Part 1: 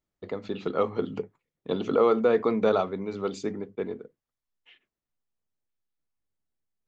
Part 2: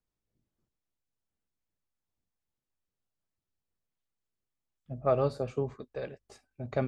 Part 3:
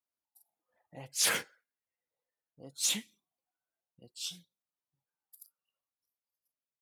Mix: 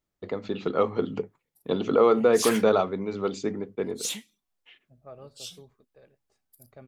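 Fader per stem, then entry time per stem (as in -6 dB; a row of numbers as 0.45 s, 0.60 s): +2.0 dB, -19.0 dB, -1.5 dB; 0.00 s, 0.00 s, 1.20 s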